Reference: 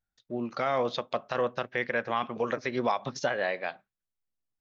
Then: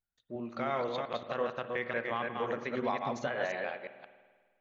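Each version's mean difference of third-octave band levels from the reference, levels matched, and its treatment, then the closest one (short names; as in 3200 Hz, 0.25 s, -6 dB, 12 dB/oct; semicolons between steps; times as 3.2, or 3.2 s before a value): 4.5 dB: reverse delay 0.176 s, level -3 dB; bell 5200 Hz -14 dB 0.29 oct; spring tank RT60 1.6 s, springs 51 ms, chirp 70 ms, DRR 11 dB; gain -6 dB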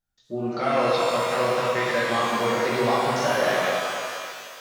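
11.0 dB: bell 2000 Hz -2.5 dB; on a send: delay with a stepping band-pass 0.298 s, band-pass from 670 Hz, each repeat 1.4 oct, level -9.5 dB; on the sum: shimmer reverb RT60 2.1 s, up +12 st, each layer -8 dB, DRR -6.5 dB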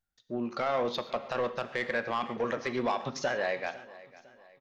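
3.5 dB: soft clip -21 dBFS, distortion -16 dB; feedback echo 0.503 s, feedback 43%, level -19.5 dB; non-linear reverb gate 0.16 s flat, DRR 11 dB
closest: third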